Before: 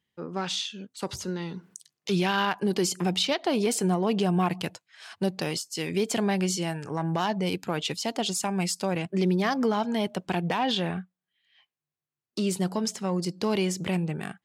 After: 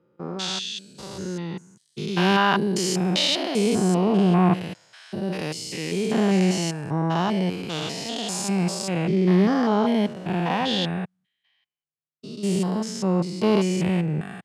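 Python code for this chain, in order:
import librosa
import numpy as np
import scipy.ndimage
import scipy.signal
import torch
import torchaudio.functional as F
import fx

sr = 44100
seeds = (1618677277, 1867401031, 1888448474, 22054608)

y = fx.spec_steps(x, sr, hold_ms=200)
y = scipy.signal.sosfilt(scipy.signal.bessel(2, 10000.0, 'lowpass', norm='mag', fs=sr, output='sos'), y)
y = fx.band_widen(y, sr, depth_pct=40)
y = y * 10.0 ** (7.5 / 20.0)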